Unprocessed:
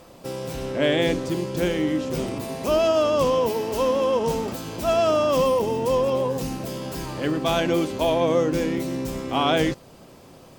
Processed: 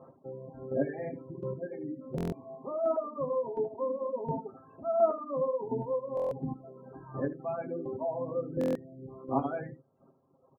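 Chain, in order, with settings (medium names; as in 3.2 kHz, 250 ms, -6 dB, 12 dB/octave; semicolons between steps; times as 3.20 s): band-pass 110–2600 Hz; distance through air 350 m; spectral gate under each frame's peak -20 dB strong; square tremolo 1.4 Hz, depth 60%, duty 15%; comb 7.5 ms, depth 54%; early reflections 21 ms -9.5 dB, 77 ms -7 dB; reverb removal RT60 1.4 s; buffer glitch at 2.16/6.15/8.59 s, samples 1024, times 6; trim -4.5 dB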